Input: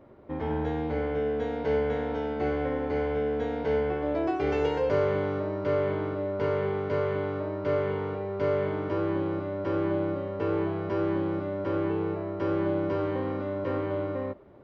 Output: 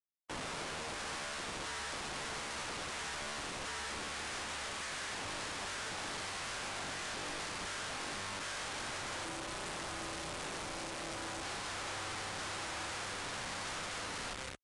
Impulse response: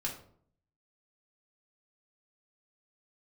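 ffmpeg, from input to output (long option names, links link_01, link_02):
-filter_complex "[0:a]aecho=1:1:166.2|233.2:0.398|0.447,asoftclip=type=tanh:threshold=-30dB,acrusher=bits=5:mix=0:aa=0.000001,highpass=frequency=51:width=0.5412,highpass=frequency=51:width=1.3066,asettb=1/sr,asplit=3[link_01][link_02][link_03];[link_01]atrim=end=9.234[link_04];[link_02]atrim=start=9.23:end=11.43,asetpts=PTS-STARTPTS,afade=type=in:duration=0.004:curve=qsin,afade=type=out:start_time=2.196:duration=0.004:curve=qsin,acrossover=split=100|240|720|4100[link_05][link_06][link_07][link_08][link_09];[link_05]acompressor=threshold=-50dB:ratio=4[link_10];[link_06]acompressor=threshold=-56dB:ratio=4[link_11];[link_07]acompressor=threshold=-43dB:ratio=4[link_12];[link_08]acompressor=threshold=-52dB:ratio=4[link_13];[link_09]acompressor=threshold=-58dB:ratio=4[link_14];[link_10][link_11][link_12][link_13][link_14]amix=inputs=5:normalize=0[link_15];[link_03]atrim=start=11.426[link_16];[link_04][link_15]acrossfade=duration=0.004:curve1=hsin:curve2=qsin[link_17];[link_17][link_16]acrossfade=duration=0.004:curve1=qsin:curve2=hsin,adynamicequalizer=threshold=0.00562:dfrequency=210:dqfactor=0.79:tfrequency=210:tqfactor=0.79:attack=5:release=100:ratio=0.375:range=2.5:mode=cutabove:tftype=bell,aeval=exprs='(mod(84.1*val(0)+1,2)-1)/84.1':channel_layout=same,volume=2dB" -ar 22050 -c:a libvorbis -b:a 64k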